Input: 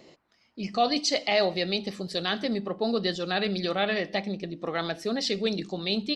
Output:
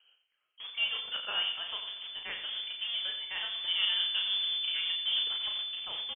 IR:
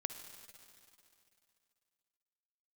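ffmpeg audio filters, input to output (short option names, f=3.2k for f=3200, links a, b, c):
-filter_complex "[0:a]asettb=1/sr,asplit=3[a][b][c];[a]atrim=end=3.674[d];[b]atrim=start=3.67:end=5.27,asetpts=PTS-STARTPTS,afade=t=in:d=0.004:c=qsin,afade=t=out:st=1.596:d=0.004:c=qsin,tiltshelf=f=1.2k:g=9[e];[c]atrim=start=5.266[f];[d][e]acrossfade=d=0.004:c1=hsin:c2=qsin[g];[g][f]acrossfade=d=0.004:c1=qsin:c2=hsin,adynamicsmooth=sensitivity=1:basefreq=1.9k,acrossover=split=320|1200[h][i][j];[h]acrusher=bits=3:dc=4:mix=0:aa=0.000001[k];[k][i][j]amix=inputs=3:normalize=0,aecho=1:1:88:0.335,asplit=2[l][m];[1:a]atrim=start_sample=2205,adelay=35[n];[m][n]afir=irnorm=-1:irlink=0,volume=-3.5dB[o];[l][o]amix=inputs=2:normalize=0,lowpass=f=3k:t=q:w=0.5098,lowpass=f=3k:t=q:w=0.6013,lowpass=f=3k:t=q:w=0.9,lowpass=f=3k:t=q:w=2.563,afreqshift=-3500,volume=-9dB"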